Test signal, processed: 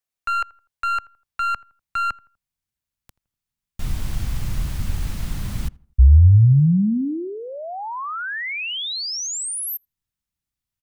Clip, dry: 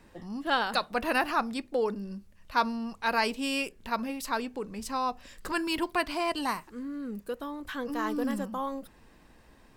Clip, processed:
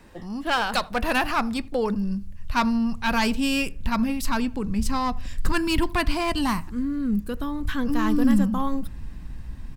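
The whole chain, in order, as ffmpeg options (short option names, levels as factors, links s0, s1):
-filter_complex "[0:a]asubboost=boost=11.5:cutoff=140,acrossover=split=600[s0][s1];[s1]aeval=exprs='clip(val(0),-1,0.0299)':c=same[s2];[s0][s2]amix=inputs=2:normalize=0,asplit=2[s3][s4];[s4]adelay=82,lowpass=f=1600:p=1,volume=0.0794,asplit=2[s5][s6];[s6]adelay=82,lowpass=f=1600:p=1,volume=0.4,asplit=2[s7][s8];[s8]adelay=82,lowpass=f=1600:p=1,volume=0.4[s9];[s3][s5][s7][s9]amix=inputs=4:normalize=0,volume=2"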